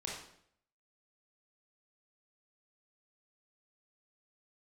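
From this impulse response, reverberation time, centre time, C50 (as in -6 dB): 0.65 s, 49 ms, 1.5 dB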